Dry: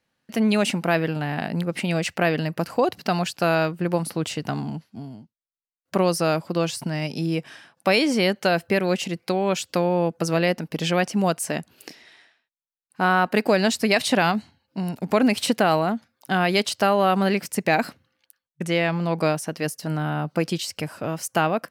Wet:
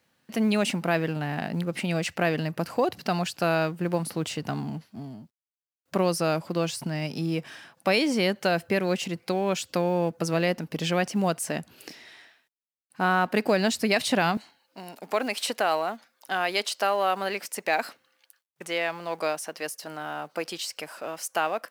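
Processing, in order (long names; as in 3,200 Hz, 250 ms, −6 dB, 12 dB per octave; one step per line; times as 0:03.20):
mu-law and A-law mismatch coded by mu
high-pass filter 59 Hz 12 dB per octave, from 0:14.37 480 Hz
level −4 dB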